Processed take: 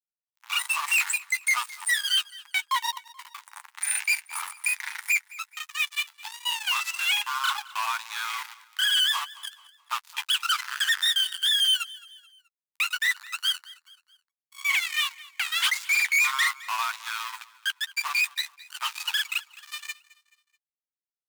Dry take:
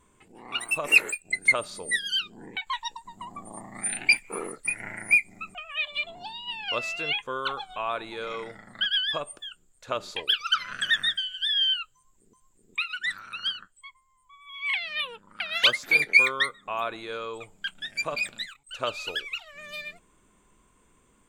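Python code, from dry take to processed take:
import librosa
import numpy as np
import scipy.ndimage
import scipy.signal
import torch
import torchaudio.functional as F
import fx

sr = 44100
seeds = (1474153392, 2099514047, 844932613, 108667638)

p1 = fx.granulator(x, sr, seeds[0], grain_ms=178.0, per_s=15.0, spray_ms=27.0, spread_st=0)
p2 = fx.dynamic_eq(p1, sr, hz=7300.0, q=1.2, threshold_db=-43.0, ratio=4.0, max_db=3)
p3 = fx.quant_float(p2, sr, bits=2)
p4 = fx.fuzz(p3, sr, gain_db=33.0, gate_db=-39.0)
p5 = scipy.signal.sosfilt(scipy.signal.ellip(4, 1.0, 40, 890.0, 'highpass', fs=sr, output='sos'), p4)
p6 = fx.doubler(p5, sr, ms=12.0, db=-13.5)
p7 = p6 + fx.echo_feedback(p6, sr, ms=215, feedback_pct=44, wet_db=-20.5, dry=0)
y = p7 * 10.0 ** (-6.5 / 20.0)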